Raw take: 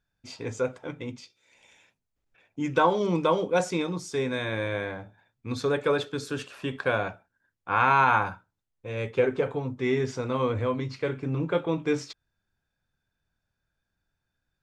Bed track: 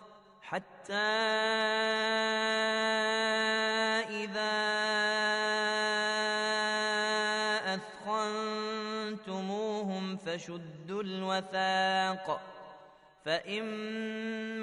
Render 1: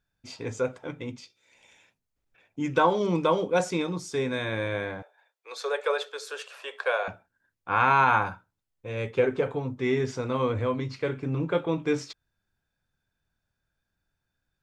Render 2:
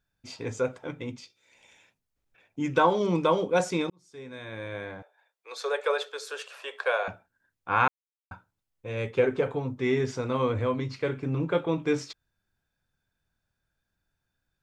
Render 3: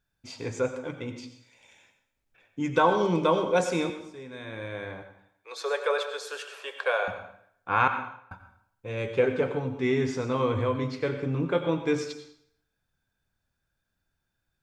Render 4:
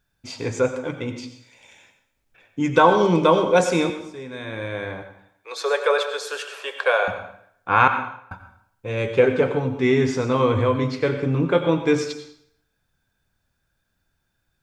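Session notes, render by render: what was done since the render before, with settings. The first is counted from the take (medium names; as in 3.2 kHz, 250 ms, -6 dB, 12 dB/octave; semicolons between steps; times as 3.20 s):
5.02–7.08 s: steep high-pass 440 Hz 48 dB/octave
3.90–5.66 s: fade in; 7.88–8.31 s: mute
plate-style reverb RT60 0.67 s, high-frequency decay 0.9×, pre-delay 75 ms, DRR 8 dB
trim +7 dB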